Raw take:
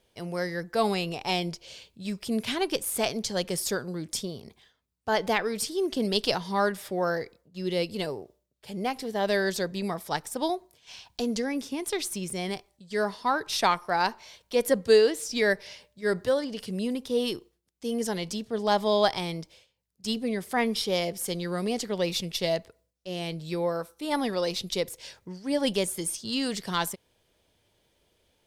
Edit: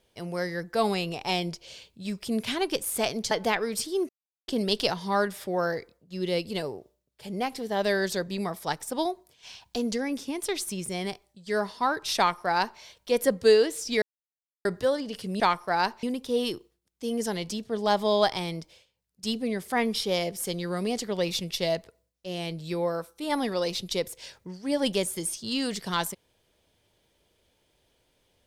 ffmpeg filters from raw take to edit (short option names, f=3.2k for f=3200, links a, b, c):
-filter_complex "[0:a]asplit=7[a][b][c][d][e][f][g];[a]atrim=end=3.312[h];[b]atrim=start=5.138:end=5.92,asetpts=PTS-STARTPTS,afade=t=out:st=0.778:d=0.004:c=hsin,apad=pad_dur=0.39[i];[c]atrim=start=5.92:end=15.46,asetpts=PTS-STARTPTS,afade=t=in:d=0.004:c=hsin,afade=t=out:st=9.536:d=0.004:c=hsin[j];[d]atrim=start=15.46:end=16.09,asetpts=PTS-STARTPTS,volume=0[k];[e]atrim=start=16.09:end=16.842,asetpts=PTS-STARTPTS,afade=t=in:d=0.004:c=hsin[l];[f]atrim=start=13.608:end=14.242[m];[g]atrim=start=16.838[n];[i][j][k][l]concat=n=4:v=0:a=1[o];[h][o]acrossfade=d=0.004:c1=hsin:c2=hsin[p];[p][m]acrossfade=d=0.004:c1=hsin:c2=hsin[q];[q][n]acrossfade=d=0.004:c1=hsin:c2=hsin"